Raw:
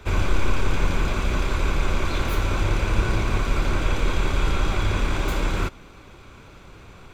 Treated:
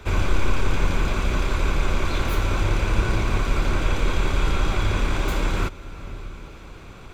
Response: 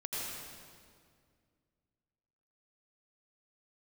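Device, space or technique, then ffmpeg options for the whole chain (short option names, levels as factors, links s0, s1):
ducked reverb: -filter_complex "[0:a]asplit=3[s0][s1][s2];[1:a]atrim=start_sample=2205[s3];[s1][s3]afir=irnorm=-1:irlink=0[s4];[s2]apad=whole_len=314589[s5];[s4][s5]sidechaincompress=threshold=0.01:ratio=4:attack=16:release=338,volume=0.447[s6];[s0][s6]amix=inputs=2:normalize=0"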